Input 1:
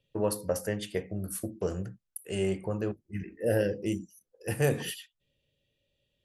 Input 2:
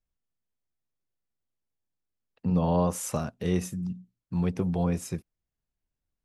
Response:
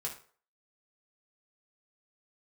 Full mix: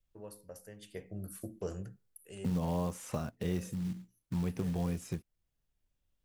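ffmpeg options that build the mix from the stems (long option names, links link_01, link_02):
-filter_complex "[0:a]highshelf=frequency=6200:gain=7.5,volume=-8.5dB,afade=type=in:start_time=0.76:duration=0.45:silence=0.237137,afade=type=out:start_time=2.11:duration=0.24:silence=0.375837,asplit=2[link_01][link_02];[link_02]volume=-17.5dB[link_03];[1:a]adynamicequalizer=threshold=0.00891:dfrequency=710:dqfactor=0.98:tfrequency=710:tqfactor=0.98:attack=5:release=100:ratio=0.375:range=2:mode=cutabove:tftype=bell,acompressor=threshold=-40dB:ratio=2,acrusher=bits=5:mode=log:mix=0:aa=0.000001,volume=1.5dB,asplit=2[link_04][link_05];[link_05]apad=whole_len=275495[link_06];[link_01][link_06]sidechaincompress=threshold=-46dB:ratio=8:attack=16:release=1140[link_07];[2:a]atrim=start_sample=2205[link_08];[link_03][link_08]afir=irnorm=-1:irlink=0[link_09];[link_07][link_04][link_09]amix=inputs=3:normalize=0,lowshelf=frequency=73:gain=5.5,acrossover=split=3600[link_10][link_11];[link_11]acompressor=threshold=-46dB:ratio=4:attack=1:release=60[link_12];[link_10][link_12]amix=inputs=2:normalize=0"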